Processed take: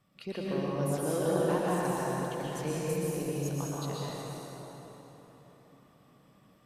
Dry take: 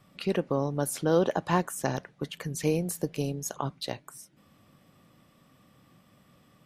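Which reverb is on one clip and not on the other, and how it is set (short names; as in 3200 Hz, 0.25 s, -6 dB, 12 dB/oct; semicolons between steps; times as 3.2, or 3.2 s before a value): plate-style reverb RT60 4.4 s, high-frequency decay 0.6×, pre-delay 0.105 s, DRR -7 dB; gain -10.5 dB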